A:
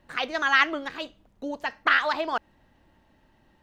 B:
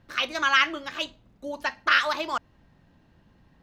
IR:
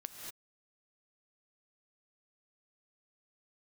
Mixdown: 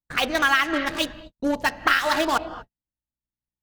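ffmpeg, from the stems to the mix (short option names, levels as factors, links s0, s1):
-filter_complex "[0:a]lowshelf=f=240:g=11.5,bandreject=f=86.2:t=h:w=4,bandreject=f=172.4:t=h:w=4,bandreject=f=258.6:t=h:w=4,bandreject=f=344.8:t=h:w=4,bandreject=f=431:t=h:w=4,bandreject=f=517.2:t=h:w=4,bandreject=f=603.4:t=h:w=4,bandreject=f=689.6:t=h:w=4,bandreject=f=775.8:t=h:w=4,bandreject=f=862:t=h:w=4,aeval=exprs='val(0)+0.002*(sin(2*PI*60*n/s)+sin(2*PI*2*60*n/s)/2+sin(2*PI*3*60*n/s)/3+sin(2*PI*4*60*n/s)/4+sin(2*PI*5*60*n/s)/5)':c=same,volume=1.12,asplit=2[s0][s1];[s1]volume=0.708[s2];[1:a]highshelf=f=4600:g=9,dynaudnorm=f=260:g=5:m=3.76,acrusher=bits=3:mix=0:aa=0.5,volume=-1,volume=0.708[s3];[2:a]atrim=start_sample=2205[s4];[s2][s4]afir=irnorm=-1:irlink=0[s5];[s0][s3][s5]amix=inputs=3:normalize=0,agate=range=0.00398:threshold=0.0126:ratio=16:detection=peak,acompressor=threshold=0.178:ratio=10"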